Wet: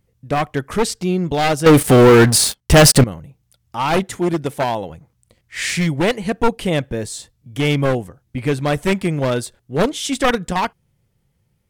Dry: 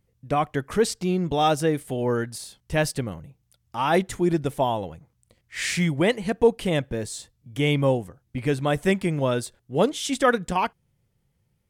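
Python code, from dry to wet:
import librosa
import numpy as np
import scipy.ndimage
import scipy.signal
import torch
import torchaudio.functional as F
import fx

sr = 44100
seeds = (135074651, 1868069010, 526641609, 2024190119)

y = np.minimum(x, 2.0 * 10.0 ** (-19.0 / 20.0) - x)
y = fx.leveller(y, sr, passes=5, at=(1.66, 3.04))
y = fx.highpass(y, sr, hz=140.0, slope=6, at=(4.03, 4.9))
y = y * 10.0 ** (5.0 / 20.0)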